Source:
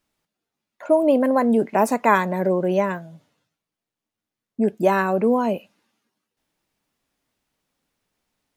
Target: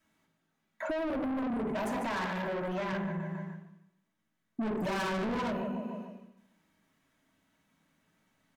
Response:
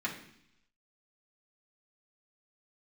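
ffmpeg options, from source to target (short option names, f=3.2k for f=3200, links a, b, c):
-filter_complex "[0:a]asettb=1/sr,asplit=3[a][b][c];[a]atrim=end=1.104[d];[b]atrim=start=1.1:end=1.66,asetpts=PTS-STARTPTS,afade=t=in:d=0.004:c=qsin,afade=t=out:st=0.556:d=0.004:c=qsin,asuperstop=centerf=2400:order=20:qfactor=0.71[e];[c]atrim=start=1.656[f];[d][e]acrossfade=d=0.004:c1=hsin:c2=qsin[g];[g][f]acrossfade=d=0.004:c1=qsin:c2=hsin,aecho=1:1:148|296|444|592:0.282|0.116|0.0474|0.0194[h];[1:a]atrim=start_sample=2205,asetrate=39249,aresample=44100[i];[h][i]afir=irnorm=-1:irlink=0,alimiter=limit=-7dB:level=0:latency=1:release=17,asplit=3[j][k][l];[j]afade=t=out:st=4.6:d=0.02[m];[k]acontrast=38,afade=t=in:st=4.6:d=0.02,afade=t=out:st=5.5:d=0.02[n];[l]afade=t=in:st=5.5:d=0.02[o];[m][n][o]amix=inputs=3:normalize=0,asoftclip=type=tanh:threshold=-19.5dB,asettb=1/sr,asplit=3[p][q][r];[p]atrim=end=2.264[s];[q]atrim=start=2.26:end=2.93,asetpts=PTS-STARTPTS,afade=t=in:d=0.004:c=qsin,afade=t=out:st=0.666:d=0.004:c=qsin,lowshelf=f=420:g=-6[t];[r]atrim=start=2.926[u];[s][t]acrossfade=d=0.004:c1=hsin:c2=qsin[v];[v][u]acrossfade=d=0.004:c1=qsin:c2=hsin,acompressor=threshold=-31dB:ratio=12,volume=-1dB"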